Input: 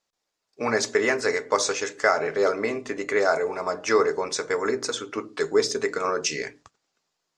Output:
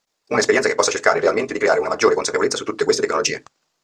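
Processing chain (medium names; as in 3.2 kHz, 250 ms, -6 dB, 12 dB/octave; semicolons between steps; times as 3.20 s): granular stretch 0.52×, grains 40 ms; in parallel at -11 dB: saturation -22 dBFS, distortion -9 dB; on the sum: trim +6 dB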